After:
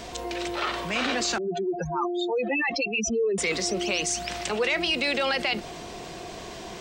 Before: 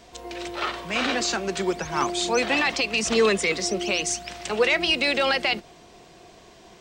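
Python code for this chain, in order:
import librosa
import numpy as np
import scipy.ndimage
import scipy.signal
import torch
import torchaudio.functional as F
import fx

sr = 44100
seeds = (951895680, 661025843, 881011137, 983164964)

y = fx.spec_expand(x, sr, power=3.3, at=(1.38, 3.38))
y = fx.env_flatten(y, sr, amount_pct=50)
y = y * 10.0 ** (-6.0 / 20.0)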